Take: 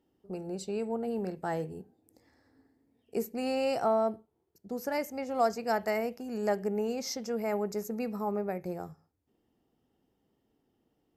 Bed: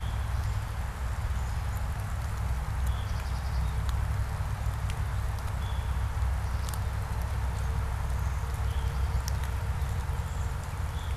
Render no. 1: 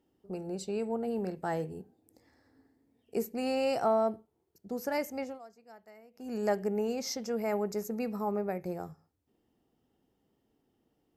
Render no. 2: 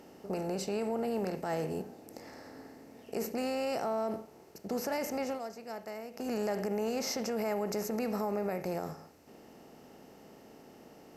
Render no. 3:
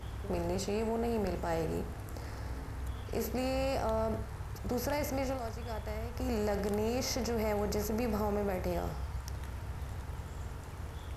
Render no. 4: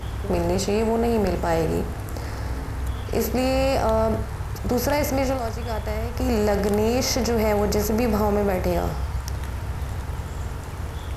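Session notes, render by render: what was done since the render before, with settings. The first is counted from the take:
5.23–6.29 dip -24 dB, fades 0.16 s
per-bin compression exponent 0.6; limiter -25 dBFS, peak gain reduction 9 dB
add bed -10 dB
gain +11.5 dB

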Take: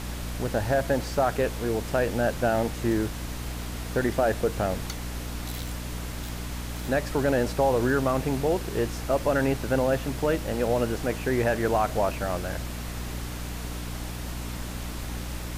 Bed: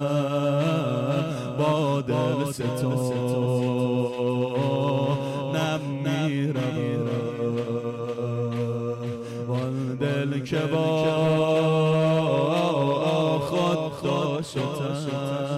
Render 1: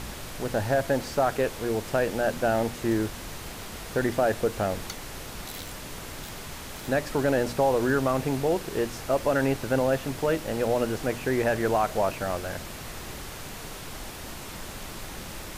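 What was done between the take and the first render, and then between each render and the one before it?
de-hum 60 Hz, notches 5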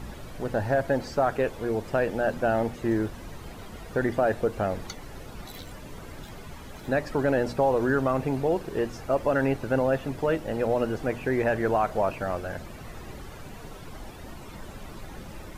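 denoiser 12 dB, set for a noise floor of -40 dBFS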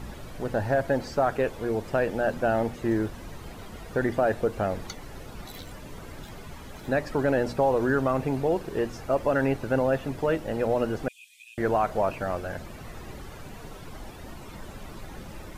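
11.08–11.58 rippled Chebyshev high-pass 2400 Hz, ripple 9 dB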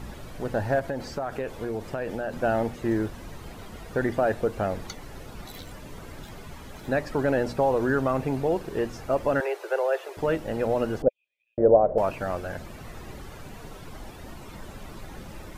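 0.79–2.4 compressor, threshold -26 dBFS; 9.4–10.17 steep high-pass 350 Hz 96 dB/oct; 11.02–11.98 synth low-pass 550 Hz, resonance Q 5.1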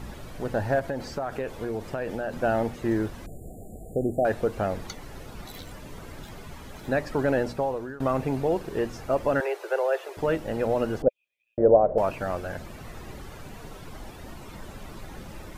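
3.26–4.25 brick-wall FIR band-stop 790–6800 Hz; 7.38–8 fade out linear, to -22.5 dB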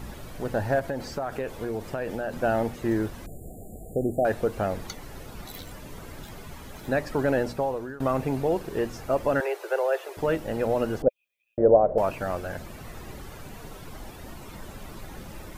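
high shelf 11000 Hz +7.5 dB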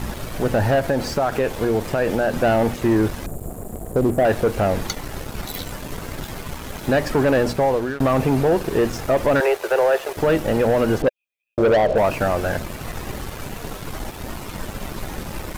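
sample leveller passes 3; limiter -11.5 dBFS, peak gain reduction 4.5 dB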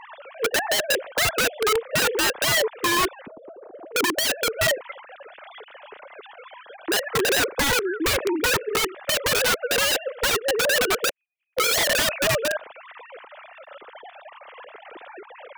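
sine-wave speech; wrapped overs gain 16.5 dB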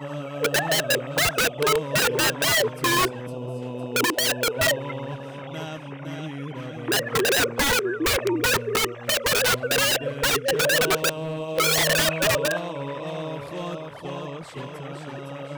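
add bed -9 dB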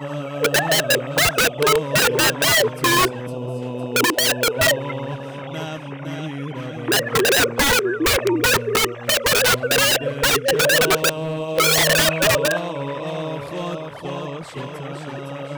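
gain +4.5 dB

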